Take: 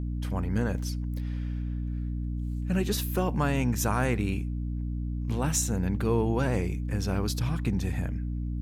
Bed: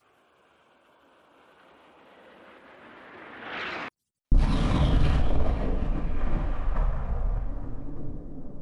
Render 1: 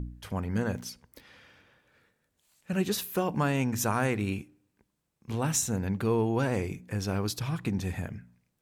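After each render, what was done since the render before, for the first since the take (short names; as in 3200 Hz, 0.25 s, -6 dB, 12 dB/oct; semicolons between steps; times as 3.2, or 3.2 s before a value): de-hum 60 Hz, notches 5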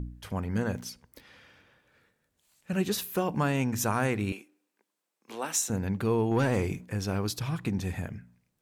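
4.32–5.7 Bessel high-pass 420 Hz, order 4; 6.31–6.86 sample leveller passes 1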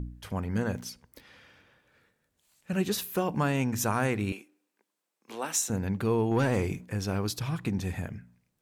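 nothing audible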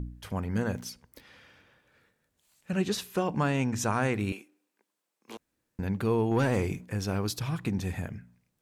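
2.71–4.14 LPF 8200 Hz; 5.37–5.79 room tone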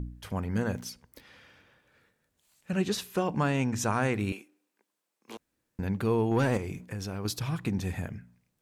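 6.57–7.25 compressor 4:1, threshold -32 dBFS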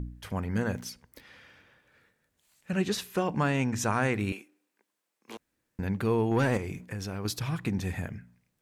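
bell 1900 Hz +3 dB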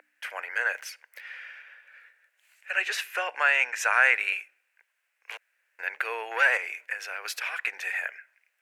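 steep high-pass 540 Hz 36 dB/oct; band shelf 2000 Hz +13.5 dB 1.2 oct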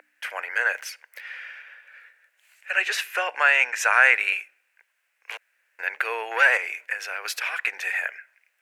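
gain +4 dB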